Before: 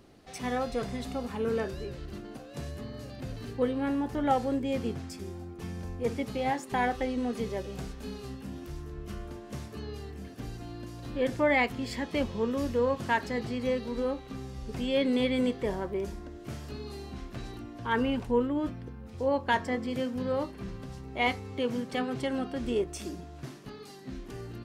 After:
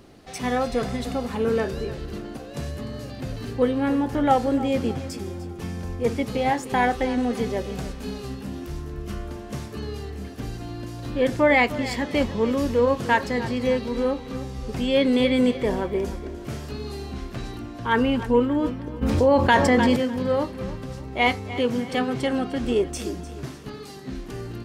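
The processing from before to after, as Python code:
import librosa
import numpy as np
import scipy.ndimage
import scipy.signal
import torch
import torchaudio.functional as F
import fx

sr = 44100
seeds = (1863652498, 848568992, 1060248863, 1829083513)

p1 = x + fx.echo_feedback(x, sr, ms=300, feedback_pct=41, wet_db=-15.0, dry=0)
p2 = fx.env_flatten(p1, sr, amount_pct=70, at=(19.01, 19.95), fade=0.02)
y = F.gain(torch.from_numpy(p2), 7.0).numpy()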